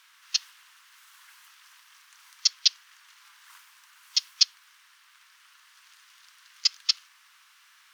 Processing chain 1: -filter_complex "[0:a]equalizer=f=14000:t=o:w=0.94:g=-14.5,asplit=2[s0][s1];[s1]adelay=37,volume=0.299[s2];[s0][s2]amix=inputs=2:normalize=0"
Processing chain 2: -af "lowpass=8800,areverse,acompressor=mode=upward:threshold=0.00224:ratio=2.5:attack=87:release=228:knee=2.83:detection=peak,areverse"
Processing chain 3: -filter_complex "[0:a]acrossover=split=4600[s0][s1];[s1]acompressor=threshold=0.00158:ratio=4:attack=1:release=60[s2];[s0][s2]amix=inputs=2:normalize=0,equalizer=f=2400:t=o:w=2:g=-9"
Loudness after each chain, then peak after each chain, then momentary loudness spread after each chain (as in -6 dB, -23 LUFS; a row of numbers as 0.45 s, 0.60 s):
-27.5 LUFS, -26.0 LUFS, -36.5 LUFS; -6.5 dBFS, -4.5 dBFS, -15.5 dBFS; 7 LU, 7 LU, 7 LU